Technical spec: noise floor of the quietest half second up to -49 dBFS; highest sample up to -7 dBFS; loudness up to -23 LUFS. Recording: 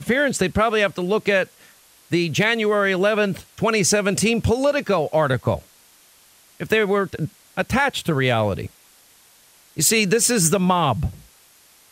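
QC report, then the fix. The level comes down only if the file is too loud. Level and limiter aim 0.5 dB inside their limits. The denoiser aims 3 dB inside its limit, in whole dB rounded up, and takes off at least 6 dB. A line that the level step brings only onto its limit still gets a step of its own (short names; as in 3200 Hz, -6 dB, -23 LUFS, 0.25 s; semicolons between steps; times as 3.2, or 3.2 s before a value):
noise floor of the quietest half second -53 dBFS: OK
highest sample -4.5 dBFS: fail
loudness -20.0 LUFS: fail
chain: gain -3.5 dB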